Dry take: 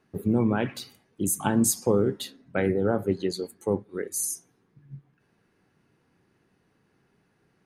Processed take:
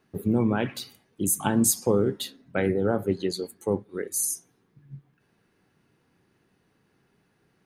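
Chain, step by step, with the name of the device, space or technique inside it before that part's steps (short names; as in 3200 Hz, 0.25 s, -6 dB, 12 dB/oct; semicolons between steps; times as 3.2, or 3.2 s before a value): presence and air boost (bell 3500 Hz +2.5 dB; high shelf 12000 Hz +6.5 dB)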